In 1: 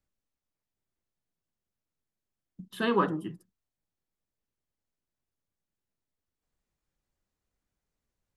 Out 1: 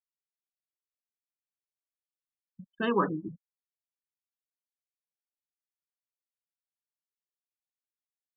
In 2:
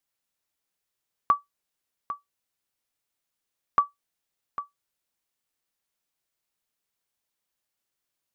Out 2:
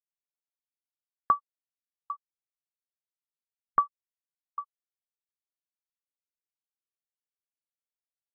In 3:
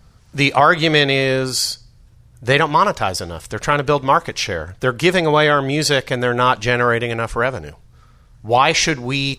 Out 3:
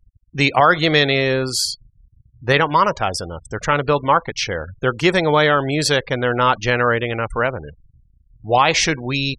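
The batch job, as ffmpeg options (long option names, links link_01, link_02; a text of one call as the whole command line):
ffmpeg -i in.wav -af "afftfilt=real='re*gte(hypot(re,im),0.0316)':imag='im*gte(hypot(re,im),0.0316)':win_size=1024:overlap=0.75,anlmdn=0.1,volume=-1dB" out.wav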